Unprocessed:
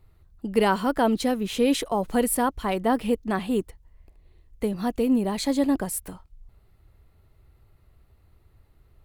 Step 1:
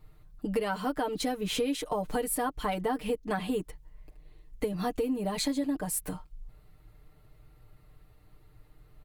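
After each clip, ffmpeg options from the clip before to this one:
-af "aecho=1:1:6.6:0.86,acompressor=threshold=-27dB:ratio=8"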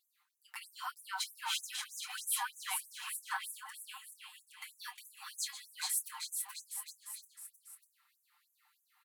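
-filter_complex "[0:a]asplit=2[a][b];[b]adelay=25,volume=-9.5dB[c];[a][c]amix=inputs=2:normalize=0,asplit=2[d][e];[e]aecho=0:1:430|817|1165|1479|1761:0.631|0.398|0.251|0.158|0.1[f];[d][f]amix=inputs=2:normalize=0,afftfilt=real='re*gte(b*sr/1024,750*pow(6100/750,0.5+0.5*sin(2*PI*3.2*pts/sr)))':imag='im*gte(b*sr/1024,750*pow(6100/750,0.5+0.5*sin(2*PI*3.2*pts/sr)))':win_size=1024:overlap=0.75,volume=-2dB"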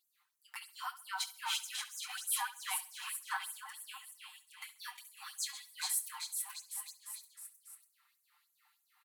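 -af "aecho=1:1:68|136|204:0.158|0.0475|0.0143"

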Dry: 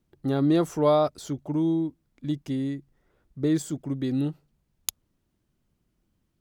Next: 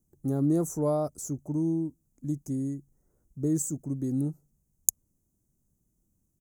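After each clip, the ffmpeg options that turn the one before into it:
-af "firequalizer=gain_entry='entry(180,0);entry(370,-4);entry(3200,-30);entry(6400,8)':delay=0.05:min_phase=1,volume=-1dB"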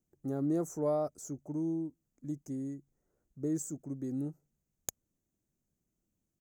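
-filter_complex "[0:a]asplit=2[a][b];[b]highpass=f=720:p=1,volume=13dB,asoftclip=type=tanh:threshold=-1dB[c];[a][c]amix=inputs=2:normalize=0,lowpass=f=3.6k:p=1,volume=-6dB,equalizer=f=1k:t=o:w=0.67:g=-5,equalizer=f=4k:t=o:w=0.67:g=-4,equalizer=f=10k:t=o:w=0.67:g=-7,volume=-7dB"

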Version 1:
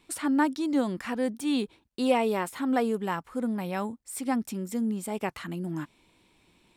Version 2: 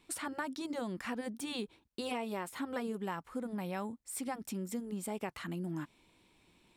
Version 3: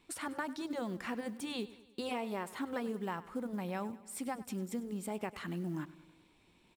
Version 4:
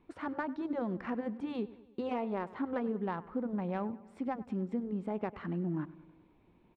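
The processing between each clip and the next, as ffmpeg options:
-af "afftfilt=real='re*lt(hypot(re,im),0.501)':imag='im*lt(hypot(re,im),0.501)':win_size=1024:overlap=0.75,acompressor=threshold=-31dB:ratio=4,volume=-3.5dB"
-af "highshelf=f=5.1k:g=-4.5,aecho=1:1:99|198|297|396|495:0.133|0.076|0.0433|0.0247|0.0141,acrusher=bits=8:mode=log:mix=0:aa=0.000001"
-filter_complex "[0:a]acrossover=split=7200[a][b];[b]aeval=exprs='val(0)*gte(abs(val(0)),0.0015)':c=same[c];[a][c]amix=inputs=2:normalize=0,adynamicsmooth=sensitivity=1:basefreq=1.4k,volume=4dB"

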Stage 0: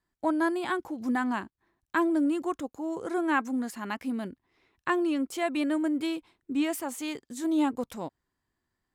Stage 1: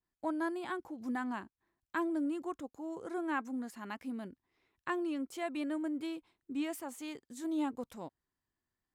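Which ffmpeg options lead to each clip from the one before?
-af "adynamicequalizer=threshold=0.00708:dfrequency=1700:dqfactor=0.7:tfrequency=1700:tqfactor=0.7:attack=5:release=100:ratio=0.375:range=1.5:mode=cutabove:tftype=highshelf,volume=-8.5dB"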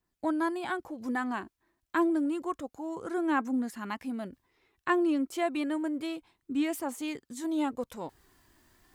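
-af "areverse,acompressor=mode=upward:threshold=-53dB:ratio=2.5,areverse,aphaser=in_gain=1:out_gain=1:delay=3.3:decay=0.32:speed=0.29:type=triangular,volume=6dB"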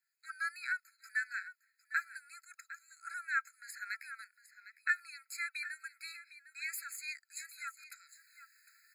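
-af "aecho=1:1:756:0.188,afftfilt=real='re*eq(mod(floor(b*sr/1024/1300),2),1)':imag='im*eq(mod(floor(b*sr/1024/1300),2),1)':win_size=1024:overlap=0.75,volume=2.5dB"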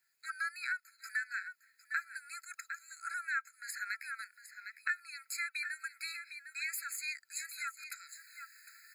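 -af "acompressor=threshold=-48dB:ratio=2,volume=8dB"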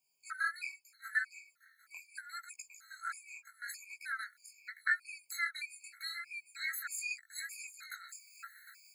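-af "flanger=delay=15.5:depth=7.9:speed=0.79,afftfilt=real='re*gt(sin(2*PI*1.6*pts/sr)*(1-2*mod(floor(b*sr/1024/1100),2)),0)':imag='im*gt(sin(2*PI*1.6*pts/sr)*(1-2*mod(floor(b*sr/1024/1100),2)),0)':win_size=1024:overlap=0.75,volume=6dB"

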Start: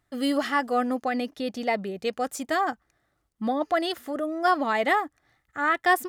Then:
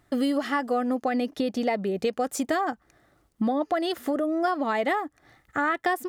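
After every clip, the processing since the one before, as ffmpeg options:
-af "equalizer=f=330:t=o:w=2.6:g=5,acompressor=threshold=-32dB:ratio=5,volume=8dB"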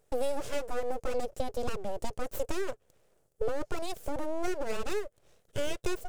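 -af "lowshelf=f=180:g=-4,aeval=exprs='abs(val(0))':c=same,equalizer=f=125:t=o:w=1:g=5,equalizer=f=250:t=o:w=1:g=-7,equalizer=f=500:t=o:w=1:g=10,equalizer=f=1k:t=o:w=1:g=-8,equalizer=f=2k:t=o:w=1:g=-7,equalizer=f=4k:t=o:w=1:g=-6,equalizer=f=8k:t=o:w=1:g=5,volume=-3dB"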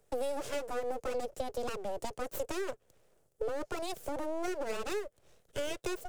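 -filter_complex "[0:a]acrossover=split=89|250[a][b][c];[a]acompressor=threshold=-42dB:ratio=4[d];[b]acompressor=threshold=-54dB:ratio=4[e];[c]acompressor=threshold=-32dB:ratio=4[f];[d][e][f]amix=inputs=3:normalize=0"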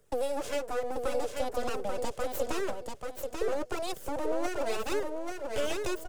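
-af "flanger=delay=0.6:depth=3.4:regen=-51:speed=1:shape=sinusoidal,aecho=1:1:837|1674|2511:0.596|0.149|0.0372,volume=7dB"

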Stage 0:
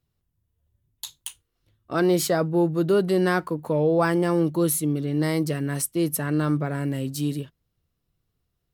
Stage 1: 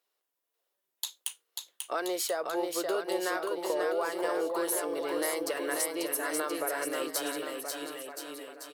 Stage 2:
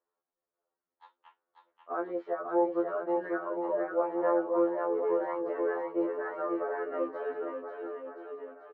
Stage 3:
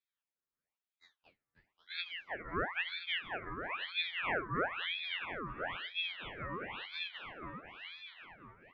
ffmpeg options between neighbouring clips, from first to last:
-filter_complex "[0:a]highpass=f=460:w=0.5412,highpass=f=460:w=1.3066,acompressor=threshold=-33dB:ratio=5,asplit=2[a][b];[b]aecho=0:1:540|1026|1463|1857|2211:0.631|0.398|0.251|0.158|0.1[c];[a][c]amix=inputs=2:normalize=0,volume=3dB"
-filter_complex "[0:a]lowpass=f=1.4k:w=0.5412,lowpass=f=1.4k:w=1.3066,asplit=2[a][b];[b]adelay=21,volume=-11dB[c];[a][c]amix=inputs=2:normalize=0,afftfilt=real='re*2*eq(mod(b,4),0)':imag='im*2*eq(mod(b,4),0)':win_size=2048:overlap=0.75,volume=2.5dB"
-af "bandreject=f=420:w=12,flanger=delay=8.8:depth=7.2:regen=-49:speed=0.39:shape=sinusoidal,aeval=exprs='val(0)*sin(2*PI*1800*n/s+1800*0.65/1*sin(2*PI*1*n/s))':c=same,volume=-1.5dB"

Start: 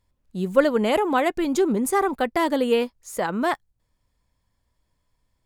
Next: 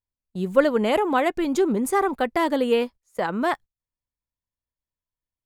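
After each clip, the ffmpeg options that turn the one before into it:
-af "bass=f=250:g=-1,treble=f=4k:g=-3,agate=range=-22dB:threshold=-37dB:ratio=16:detection=peak"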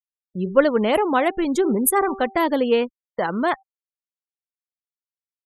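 -af "bandreject=f=388.1:t=h:w=4,bandreject=f=776.2:t=h:w=4,bandreject=f=1.1643k:t=h:w=4,afftfilt=real='re*gte(hypot(re,im),0.0178)':imag='im*gte(hypot(re,im),0.0178)':win_size=1024:overlap=0.75,aexciter=amount=7.9:drive=4.4:freq=9.9k,volume=2dB"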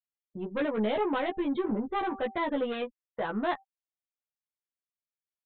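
-filter_complex "[0:a]aresample=8000,asoftclip=type=tanh:threshold=-18.5dB,aresample=44100,asplit=2[a][b];[b]adelay=14,volume=-2.5dB[c];[a][c]amix=inputs=2:normalize=0,volume=-8dB"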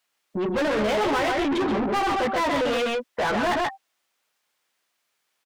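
-filter_complex "[0:a]asplit=2[a][b];[b]asoftclip=type=hard:threshold=-33.5dB,volume=-11dB[c];[a][c]amix=inputs=2:normalize=0,aecho=1:1:131:0.501,asplit=2[d][e];[e]highpass=f=720:p=1,volume=30dB,asoftclip=type=tanh:threshold=-17.5dB[f];[d][f]amix=inputs=2:normalize=0,lowpass=f=3.7k:p=1,volume=-6dB"

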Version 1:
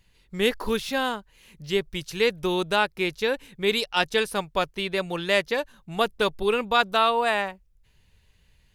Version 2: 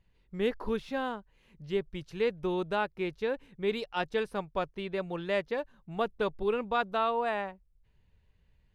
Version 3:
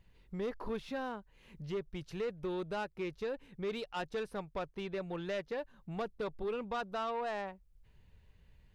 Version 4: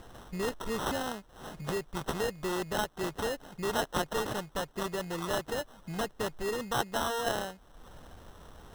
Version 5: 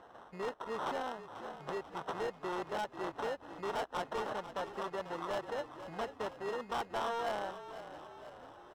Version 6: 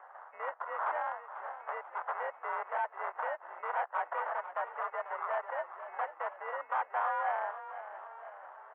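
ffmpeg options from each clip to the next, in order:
-af "lowpass=f=1.1k:p=1,volume=-5dB"
-af "acompressor=threshold=-51dB:ratio=1.5,asoftclip=type=tanh:threshold=-35dB,volume=4.5dB"
-filter_complex "[0:a]asplit=2[a][b];[b]acompressor=mode=upward:threshold=-41dB:ratio=2.5,volume=0.5dB[c];[a][c]amix=inputs=2:normalize=0,aexciter=amount=8.4:drive=8.3:freq=3.6k,acrusher=samples=19:mix=1:aa=0.000001,volume=-3dB"
-filter_complex "[0:a]bandpass=f=880:t=q:w=0.91:csg=0,asoftclip=type=hard:threshold=-31.5dB,asplit=2[a][b];[b]asplit=6[c][d][e][f][g][h];[c]adelay=491,afreqshift=-37,volume=-12dB[i];[d]adelay=982,afreqshift=-74,volume=-17dB[j];[e]adelay=1473,afreqshift=-111,volume=-22.1dB[k];[f]adelay=1964,afreqshift=-148,volume=-27.1dB[l];[g]adelay=2455,afreqshift=-185,volume=-32.1dB[m];[h]adelay=2946,afreqshift=-222,volume=-37.2dB[n];[i][j][k][l][m][n]amix=inputs=6:normalize=0[o];[a][o]amix=inputs=2:normalize=0"
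-af "highpass=f=580:t=q:w=0.5412,highpass=f=580:t=q:w=1.307,lowpass=f=2.1k:t=q:w=0.5176,lowpass=f=2.1k:t=q:w=0.7071,lowpass=f=2.1k:t=q:w=1.932,afreqshift=57,volume=5dB"

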